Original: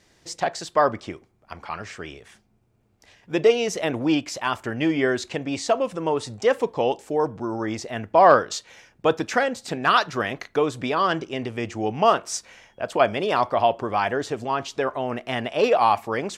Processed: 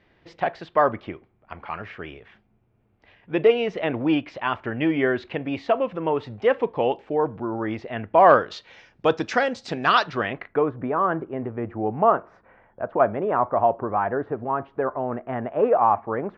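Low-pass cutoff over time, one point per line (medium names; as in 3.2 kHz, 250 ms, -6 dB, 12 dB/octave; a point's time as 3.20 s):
low-pass 24 dB/octave
8.21 s 3 kHz
9.07 s 5.6 kHz
9.97 s 5.6 kHz
10.35 s 2.8 kHz
10.76 s 1.5 kHz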